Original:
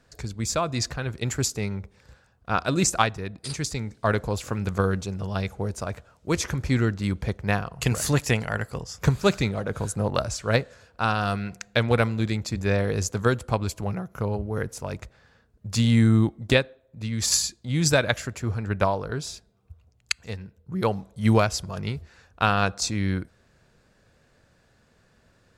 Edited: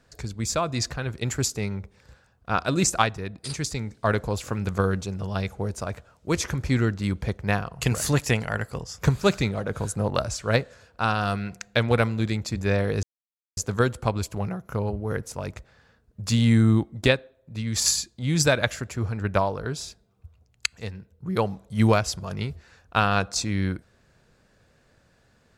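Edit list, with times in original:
13.03 insert silence 0.54 s

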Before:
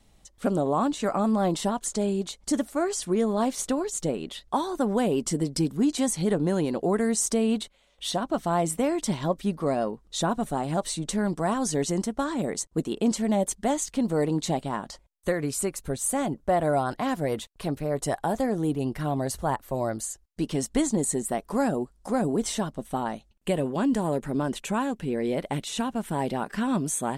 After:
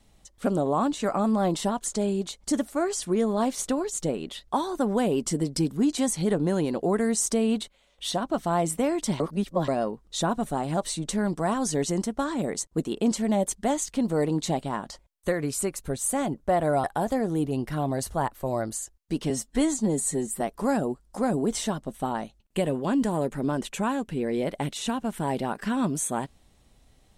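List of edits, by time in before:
9.2–9.68 reverse
16.84–18.12 cut
20.58–21.32 stretch 1.5×

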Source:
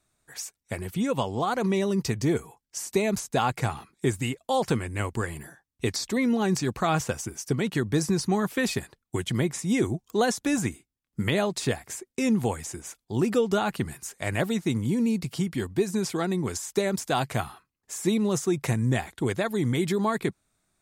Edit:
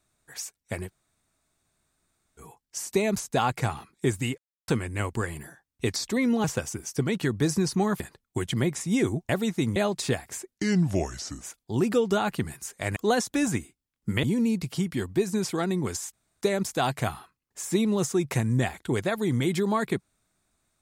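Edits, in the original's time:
0.87–2.4 room tone, crossfade 0.06 s
4.38–4.68 mute
6.44–6.96 cut
8.52–8.78 cut
10.07–11.34 swap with 14.37–14.84
12.13–12.82 speed 80%
16.74 insert room tone 0.28 s

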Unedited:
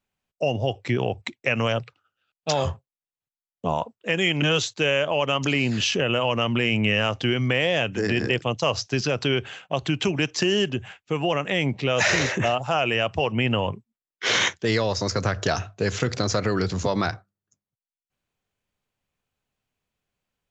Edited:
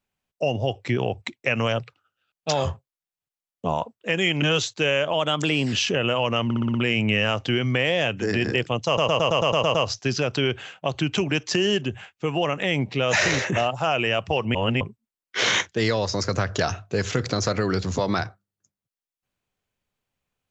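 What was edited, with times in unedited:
5.13–5.78 speed 109%
6.5 stutter 0.06 s, 6 plays
8.62 stutter 0.11 s, 9 plays
13.42–13.68 reverse

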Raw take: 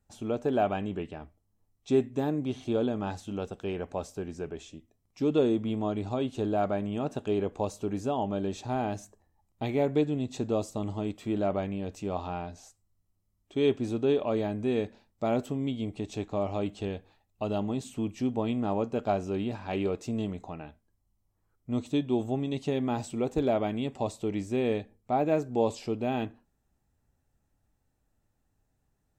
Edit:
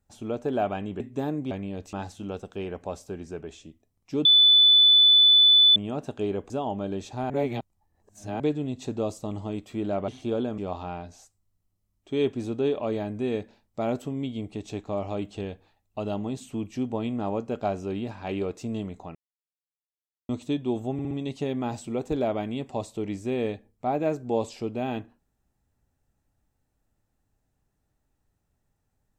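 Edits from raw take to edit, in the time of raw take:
1–2 cut
2.51–3.01 swap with 11.6–12.02
5.33–6.84 bleep 3490 Hz -13 dBFS
7.58–8.02 cut
8.82–9.92 reverse
20.59–21.73 mute
22.37 stutter 0.06 s, 4 plays

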